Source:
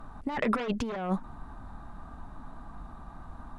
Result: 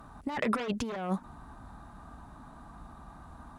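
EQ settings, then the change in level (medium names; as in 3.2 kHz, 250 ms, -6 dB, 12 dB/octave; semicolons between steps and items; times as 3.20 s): high-pass 46 Hz; treble shelf 5.6 kHz +9.5 dB; -2.0 dB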